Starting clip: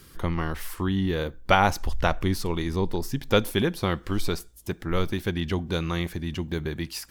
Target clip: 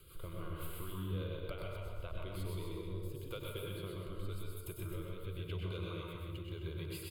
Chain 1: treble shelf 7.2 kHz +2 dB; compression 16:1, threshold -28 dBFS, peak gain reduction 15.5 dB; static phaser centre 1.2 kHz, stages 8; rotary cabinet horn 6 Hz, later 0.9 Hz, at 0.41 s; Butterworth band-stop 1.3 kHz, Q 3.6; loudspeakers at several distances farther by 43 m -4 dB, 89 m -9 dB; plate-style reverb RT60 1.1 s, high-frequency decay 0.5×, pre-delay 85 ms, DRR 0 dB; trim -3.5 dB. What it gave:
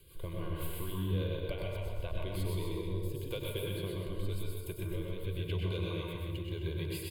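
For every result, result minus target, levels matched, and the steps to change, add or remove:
compression: peak gain reduction -6 dB; 1 kHz band -3.5 dB
change: compression 16:1, threshold -34.5 dBFS, peak gain reduction 22 dB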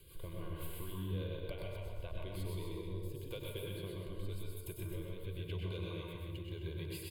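1 kHz band -3.5 dB
remove: Butterworth band-stop 1.3 kHz, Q 3.6

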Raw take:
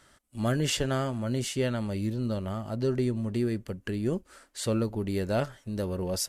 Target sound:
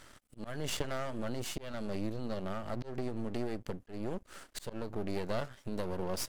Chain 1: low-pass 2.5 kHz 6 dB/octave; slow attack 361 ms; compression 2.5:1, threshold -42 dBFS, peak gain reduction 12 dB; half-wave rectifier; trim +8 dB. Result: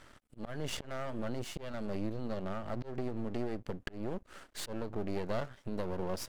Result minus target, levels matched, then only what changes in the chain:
8 kHz band -3.5 dB
change: low-pass 9.1 kHz 6 dB/octave

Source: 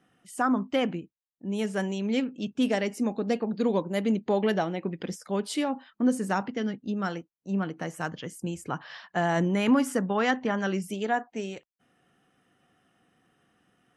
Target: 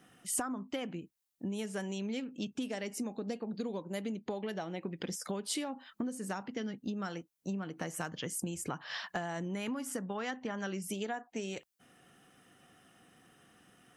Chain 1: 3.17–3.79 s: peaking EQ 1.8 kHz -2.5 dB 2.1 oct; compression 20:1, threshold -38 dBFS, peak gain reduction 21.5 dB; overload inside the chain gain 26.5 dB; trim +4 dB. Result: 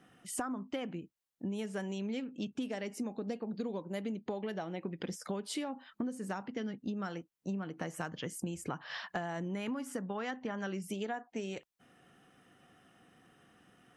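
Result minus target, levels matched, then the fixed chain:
8 kHz band -6.0 dB
3.17–3.79 s: peaking EQ 1.8 kHz -2.5 dB 2.1 oct; compression 20:1, threshold -38 dBFS, peak gain reduction 21.5 dB; treble shelf 4.5 kHz +8.5 dB; overload inside the chain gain 26.5 dB; trim +4 dB

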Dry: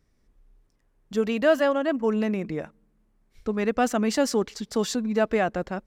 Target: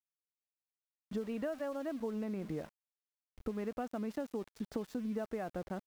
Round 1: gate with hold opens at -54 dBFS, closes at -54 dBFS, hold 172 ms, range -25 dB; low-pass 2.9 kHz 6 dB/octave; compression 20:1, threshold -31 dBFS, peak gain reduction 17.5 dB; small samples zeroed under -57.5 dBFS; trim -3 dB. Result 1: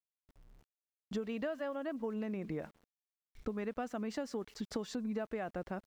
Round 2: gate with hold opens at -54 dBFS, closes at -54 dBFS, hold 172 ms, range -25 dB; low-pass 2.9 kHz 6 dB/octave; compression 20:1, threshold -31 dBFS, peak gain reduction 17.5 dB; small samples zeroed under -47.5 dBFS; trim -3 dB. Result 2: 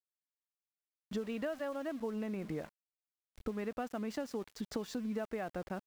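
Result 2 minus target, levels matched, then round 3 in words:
4 kHz band +6.0 dB
gate with hold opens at -54 dBFS, closes at -54 dBFS, hold 172 ms, range -25 dB; low-pass 1 kHz 6 dB/octave; compression 20:1, threshold -31 dBFS, peak gain reduction 16.5 dB; small samples zeroed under -47.5 dBFS; trim -3 dB

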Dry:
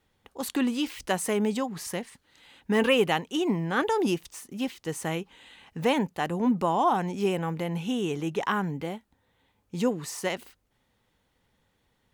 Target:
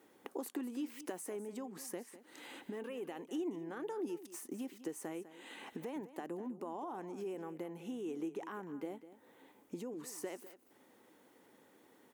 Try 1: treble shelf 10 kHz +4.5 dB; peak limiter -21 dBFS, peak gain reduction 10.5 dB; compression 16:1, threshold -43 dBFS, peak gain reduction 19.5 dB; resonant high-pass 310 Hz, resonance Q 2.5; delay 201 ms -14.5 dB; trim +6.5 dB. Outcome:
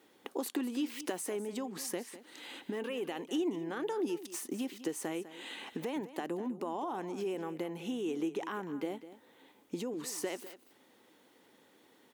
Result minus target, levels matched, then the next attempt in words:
compression: peak gain reduction -5.5 dB; 4 kHz band +5.0 dB
treble shelf 10 kHz +4.5 dB; peak limiter -21 dBFS, peak gain reduction 10.5 dB; compression 16:1, threshold -49 dBFS, peak gain reduction 25 dB; resonant high-pass 310 Hz, resonance Q 2.5; peaking EQ 3.7 kHz -7.5 dB 1.3 oct; delay 201 ms -14.5 dB; trim +6.5 dB

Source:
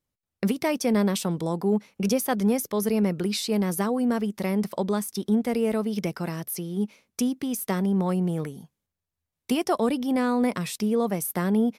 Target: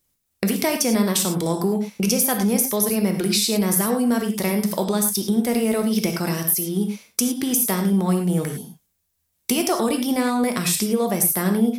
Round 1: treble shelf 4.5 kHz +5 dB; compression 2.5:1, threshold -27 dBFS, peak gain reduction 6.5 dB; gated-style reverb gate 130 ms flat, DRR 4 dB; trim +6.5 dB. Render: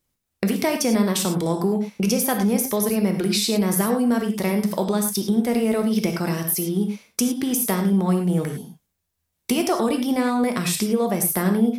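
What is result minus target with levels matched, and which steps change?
8 kHz band -3.0 dB
change: treble shelf 4.5 kHz +13 dB

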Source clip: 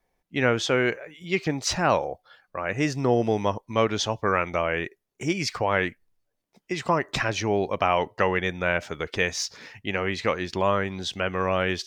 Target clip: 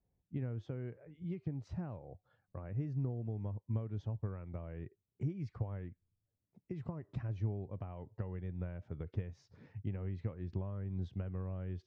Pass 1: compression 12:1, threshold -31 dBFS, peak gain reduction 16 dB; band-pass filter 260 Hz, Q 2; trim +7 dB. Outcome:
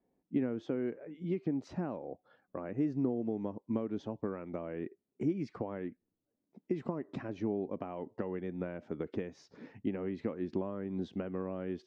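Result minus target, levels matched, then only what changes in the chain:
125 Hz band -10.0 dB
change: band-pass filter 100 Hz, Q 2

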